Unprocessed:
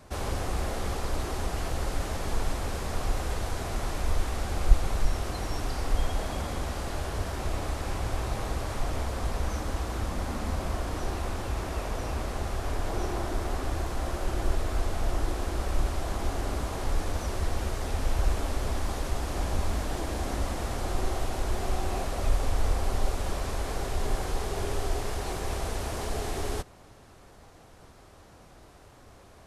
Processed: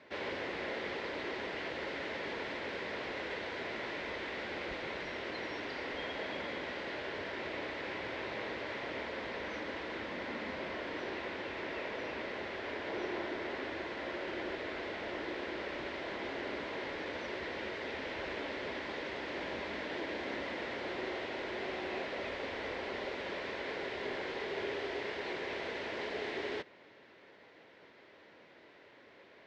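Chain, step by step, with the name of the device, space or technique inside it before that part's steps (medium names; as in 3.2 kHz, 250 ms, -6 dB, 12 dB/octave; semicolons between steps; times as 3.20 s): phone earpiece (cabinet simulation 350–3800 Hz, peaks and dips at 750 Hz -10 dB, 1.2 kHz -10 dB, 2 kHz +7 dB)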